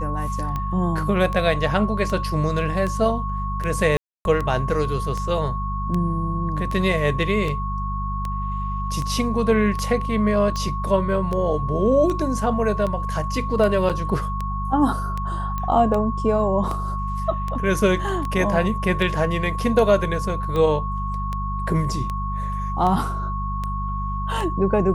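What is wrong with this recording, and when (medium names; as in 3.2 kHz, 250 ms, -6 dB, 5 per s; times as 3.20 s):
hum 50 Hz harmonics 4 -27 dBFS
tick 78 rpm -15 dBFS
whine 1.1 kHz -28 dBFS
3.97–4.25 s: dropout 281 ms
13.89–13.90 s: dropout 7 ms
15.58 s: pop -15 dBFS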